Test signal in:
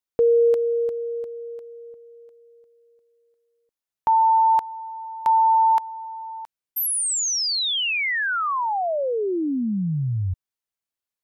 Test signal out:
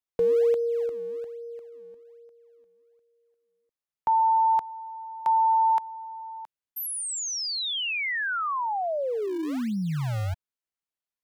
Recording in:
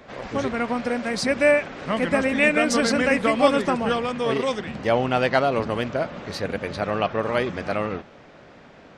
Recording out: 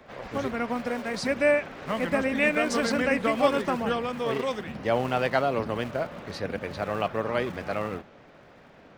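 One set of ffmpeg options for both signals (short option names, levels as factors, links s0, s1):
-filter_complex "[0:a]acrossover=split=250|2400[s0][s1][s2];[s0]acrusher=samples=38:mix=1:aa=0.000001:lfo=1:lforange=60.8:lforate=1.2[s3];[s3][s1][s2]amix=inputs=3:normalize=0,highshelf=f=4400:g=-5,volume=0.631"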